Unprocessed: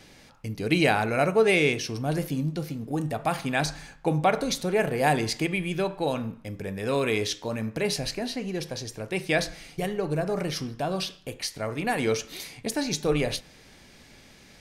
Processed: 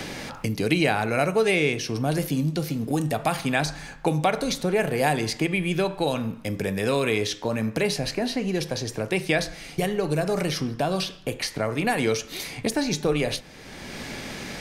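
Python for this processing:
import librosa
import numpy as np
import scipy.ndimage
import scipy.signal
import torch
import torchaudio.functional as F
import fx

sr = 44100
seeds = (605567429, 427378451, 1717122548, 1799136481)

y = fx.band_squash(x, sr, depth_pct=70)
y = y * librosa.db_to_amplitude(2.0)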